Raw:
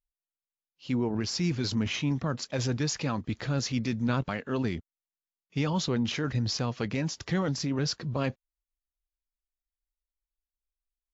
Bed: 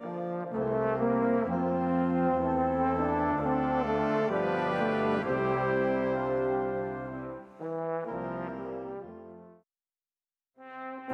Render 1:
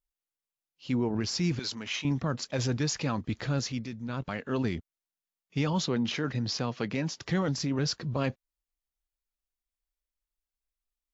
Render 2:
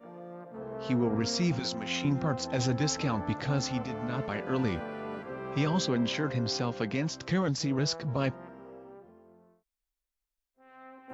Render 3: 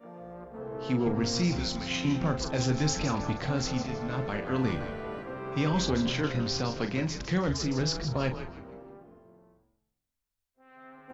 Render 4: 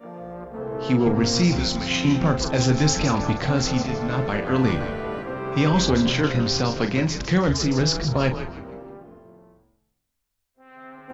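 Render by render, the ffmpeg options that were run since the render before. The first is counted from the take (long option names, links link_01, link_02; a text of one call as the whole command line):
ffmpeg -i in.wav -filter_complex "[0:a]asettb=1/sr,asplit=3[link_01][link_02][link_03];[link_01]atrim=end=1.594[link_04];[link_02]atrim=start=1.59:end=2.05,asetpts=PTS-STARTPTS,afade=type=in:duration=0.004:curve=qsin,afade=type=out:start_time=0.456:duration=0.004:curve=qsin,highpass=frequency=910:poles=1[link_05];[link_03]atrim=start=2.046[link_06];[link_04][link_05]acrossfade=duration=0.004:curve1=hsin:curve2=qsin[link_07];[link_07][link_06]acrossfade=duration=0.004:curve1=qsin:curve2=hsin,asettb=1/sr,asplit=3[link_08][link_09][link_10];[link_08]atrim=end=5.864[link_11];[link_09]atrim=start=5.86:end=7.25,asetpts=PTS-STARTPTS,afade=type=in:duration=0.004:curve=qsin,afade=type=out:start_time=1.386:duration=0.004:curve=qsin,highpass=130,lowpass=6600[link_12];[link_10]atrim=start=7.246[link_13];[link_11][link_12]acrossfade=duration=0.004:curve1=hsin:curve2=qsin[link_14];[link_14][link_13]acrossfade=duration=0.004:curve1=qsin:curve2=hsin,asplit=3[link_15][link_16][link_17];[link_15]atrim=end=3.9,asetpts=PTS-STARTPTS,afade=type=out:start_time=3.54:duration=0.36:silence=0.354813[link_18];[link_16]atrim=start=3.9:end=4.09,asetpts=PTS-STARTPTS,volume=-9dB[link_19];[link_17]atrim=start=4.09,asetpts=PTS-STARTPTS,afade=type=in:duration=0.36:silence=0.354813[link_20];[link_18][link_19][link_20]concat=n=3:v=0:a=1" out.wav
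ffmpeg -i in.wav -i bed.wav -filter_complex "[1:a]volume=-10.5dB[link_01];[0:a][link_01]amix=inputs=2:normalize=0" out.wav
ffmpeg -i in.wav -filter_complex "[0:a]asplit=2[link_01][link_02];[link_02]adelay=39,volume=-8.5dB[link_03];[link_01][link_03]amix=inputs=2:normalize=0,asplit=2[link_04][link_05];[link_05]asplit=4[link_06][link_07][link_08][link_09];[link_06]adelay=159,afreqshift=-110,volume=-10dB[link_10];[link_07]adelay=318,afreqshift=-220,volume=-19.1dB[link_11];[link_08]adelay=477,afreqshift=-330,volume=-28.2dB[link_12];[link_09]adelay=636,afreqshift=-440,volume=-37.4dB[link_13];[link_10][link_11][link_12][link_13]amix=inputs=4:normalize=0[link_14];[link_04][link_14]amix=inputs=2:normalize=0" out.wav
ffmpeg -i in.wav -af "volume=8dB" out.wav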